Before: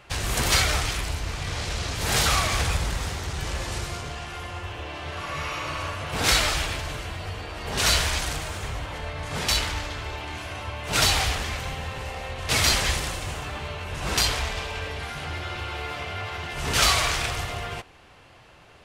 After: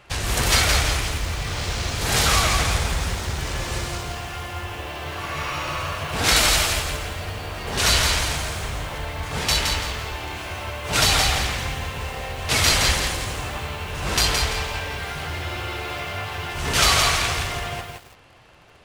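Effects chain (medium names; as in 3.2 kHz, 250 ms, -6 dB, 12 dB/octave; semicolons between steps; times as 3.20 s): 6.36–6.80 s: treble shelf 7.4 kHz +11.5 dB; in parallel at -11 dB: bit crusher 7-bit; on the sum: bit-crushed delay 168 ms, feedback 35%, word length 7-bit, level -4 dB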